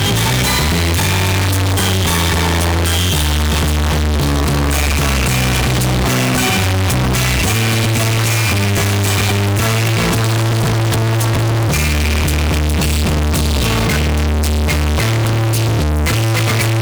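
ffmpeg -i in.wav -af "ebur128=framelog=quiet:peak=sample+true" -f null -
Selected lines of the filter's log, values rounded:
Integrated loudness:
  I:         -14.5 LUFS
  Threshold: -24.5 LUFS
Loudness range:
  LRA:         1.0 LU
  Threshold: -34.5 LUFS
  LRA low:   -15.0 LUFS
  LRA high:  -14.0 LUFS
Sample peak:
  Peak:       -9.5 dBFS
True peak:
  Peak:       -9.2 dBFS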